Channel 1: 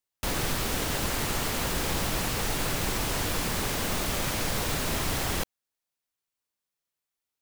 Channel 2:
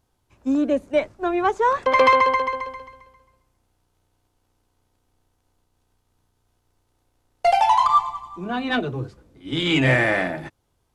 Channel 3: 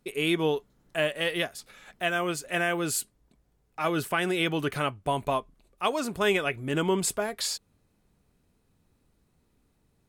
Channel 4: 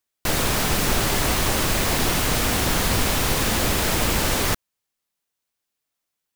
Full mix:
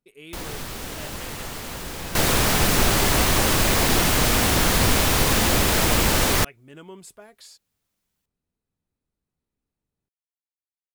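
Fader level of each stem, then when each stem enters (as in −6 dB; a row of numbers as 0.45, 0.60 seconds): −4.5 dB, muted, −16.5 dB, +2.0 dB; 0.10 s, muted, 0.00 s, 1.90 s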